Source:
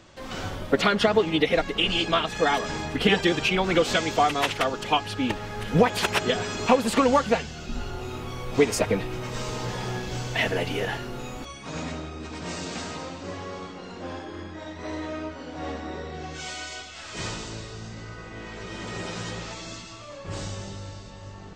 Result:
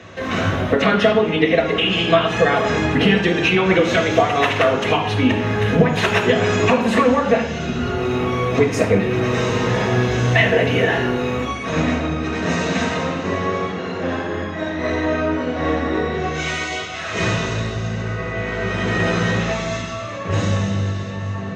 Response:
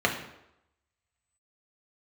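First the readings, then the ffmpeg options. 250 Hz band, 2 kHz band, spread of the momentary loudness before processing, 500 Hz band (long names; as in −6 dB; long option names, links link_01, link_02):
+9.5 dB, +9.0 dB, 17 LU, +8.5 dB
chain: -filter_complex "[0:a]acompressor=threshold=-27dB:ratio=6[link_01];[1:a]atrim=start_sample=2205,asetrate=41013,aresample=44100[link_02];[link_01][link_02]afir=irnorm=-1:irlink=0"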